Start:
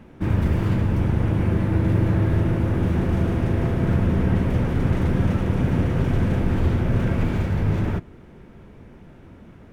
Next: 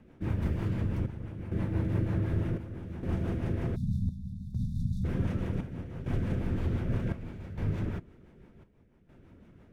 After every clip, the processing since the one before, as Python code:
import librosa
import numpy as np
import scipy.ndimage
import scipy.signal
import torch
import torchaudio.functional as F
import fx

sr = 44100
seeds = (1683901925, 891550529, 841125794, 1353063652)

y = fx.spec_erase(x, sr, start_s=3.76, length_s=1.28, low_hz=250.0, high_hz=3500.0)
y = fx.rotary(y, sr, hz=6.0)
y = fx.chopper(y, sr, hz=0.66, depth_pct=65, duty_pct=70)
y = y * librosa.db_to_amplitude(-8.5)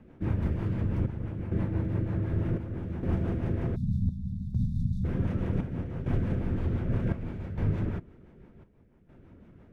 y = fx.high_shelf(x, sr, hz=3200.0, db=-9.5)
y = fx.rider(y, sr, range_db=4, speed_s=0.5)
y = y * librosa.db_to_amplitude(2.5)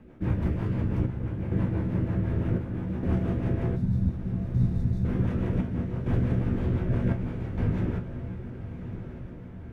y = fx.comb_fb(x, sr, f0_hz=61.0, decay_s=0.2, harmonics='all', damping=0.0, mix_pct=80)
y = fx.echo_diffused(y, sr, ms=1188, feedback_pct=53, wet_db=-10.5)
y = y * librosa.db_to_amplitude(7.0)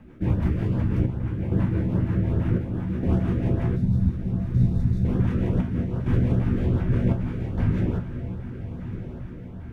y = fx.filter_lfo_notch(x, sr, shape='saw_up', hz=2.5, low_hz=350.0, high_hz=2600.0, q=1.7)
y = y * librosa.db_to_amplitude(4.0)